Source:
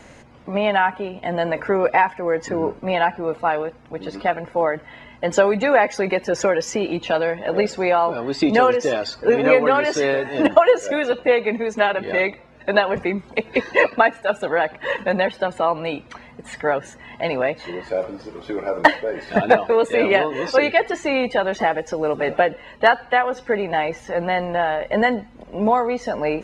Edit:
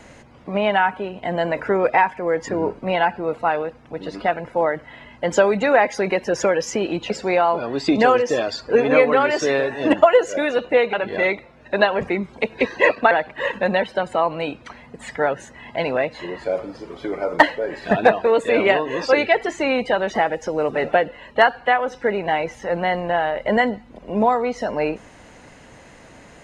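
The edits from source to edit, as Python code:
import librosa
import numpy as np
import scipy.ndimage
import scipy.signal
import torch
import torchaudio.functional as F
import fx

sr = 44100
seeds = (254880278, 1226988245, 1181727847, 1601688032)

y = fx.edit(x, sr, fx.cut(start_s=7.1, length_s=0.54),
    fx.cut(start_s=11.47, length_s=0.41),
    fx.cut(start_s=14.06, length_s=0.5), tone=tone)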